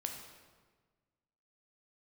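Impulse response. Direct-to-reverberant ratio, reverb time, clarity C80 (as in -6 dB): 2.5 dB, 1.4 s, 6.5 dB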